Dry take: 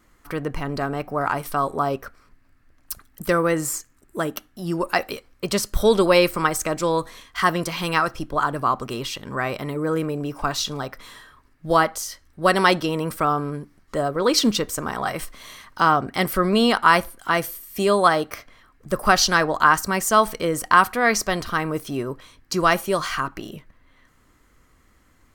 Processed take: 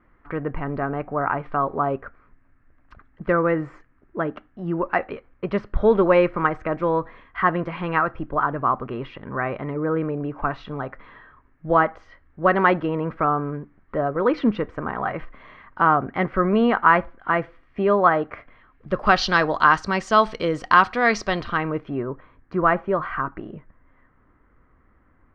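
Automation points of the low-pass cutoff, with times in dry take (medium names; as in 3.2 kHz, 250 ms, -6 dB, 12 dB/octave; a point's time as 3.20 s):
low-pass 24 dB/octave
18.30 s 2.1 kHz
19.39 s 4.5 kHz
21.26 s 4.5 kHz
22.07 s 1.8 kHz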